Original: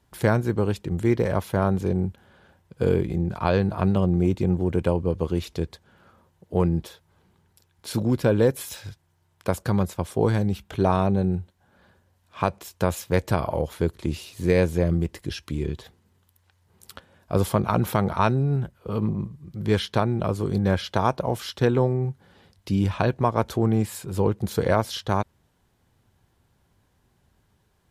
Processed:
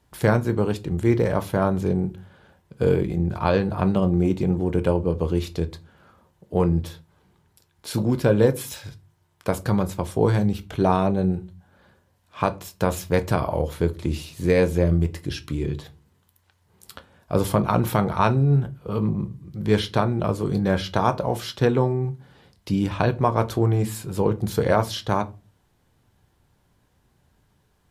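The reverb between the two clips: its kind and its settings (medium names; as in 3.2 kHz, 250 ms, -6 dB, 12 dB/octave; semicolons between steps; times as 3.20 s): simulated room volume 120 m³, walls furnished, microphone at 0.42 m; trim +1 dB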